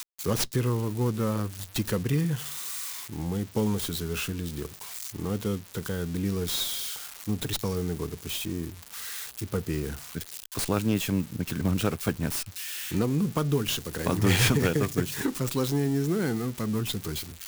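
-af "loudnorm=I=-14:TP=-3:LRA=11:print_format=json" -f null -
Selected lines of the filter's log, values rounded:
"input_i" : "-28.9",
"input_tp" : "-10.4",
"input_lra" : "5.4",
"input_thresh" : "-38.9",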